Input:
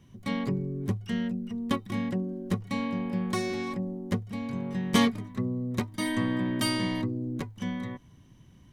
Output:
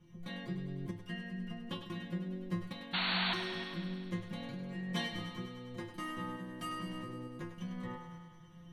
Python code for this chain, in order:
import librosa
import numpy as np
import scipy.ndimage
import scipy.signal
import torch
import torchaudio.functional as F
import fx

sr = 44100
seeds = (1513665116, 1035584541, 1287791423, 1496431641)

p1 = fx.high_shelf(x, sr, hz=4400.0, db=-10.0)
p2 = fx.over_compress(p1, sr, threshold_db=-35.0, ratio=-0.5)
p3 = p1 + (p2 * 10.0 ** (2.5 / 20.0))
p4 = fx.stiff_resonator(p3, sr, f0_hz=170.0, decay_s=0.41, stiffness=0.002)
p5 = fx.tremolo_shape(p4, sr, shape='saw_up', hz=1.1, depth_pct=40)
p6 = fx.spec_paint(p5, sr, seeds[0], shape='noise', start_s=2.93, length_s=0.41, low_hz=630.0, high_hz=4500.0, level_db=-40.0)
p7 = p6 + fx.echo_thinned(p6, sr, ms=101, feedback_pct=73, hz=360.0, wet_db=-8.5, dry=0)
y = p7 * 10.0 ** (5.5 / 20.0)